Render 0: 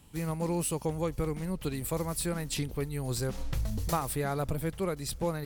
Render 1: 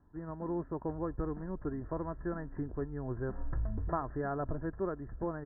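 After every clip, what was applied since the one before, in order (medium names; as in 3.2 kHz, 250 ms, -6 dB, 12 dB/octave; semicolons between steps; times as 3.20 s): level rider gain up to 4 dB; Chebyshev low-pass 1.8 kHz, order 8; comb 3 ms, depth 40%; trim -7 dB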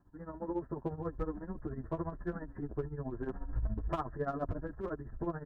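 hard clipper -27 dBFS, distortion -25 dB; tremolo 14 Hz, depth 81%; endless flanger 8.2 ms +0.9 Hz; trim +5.5 dB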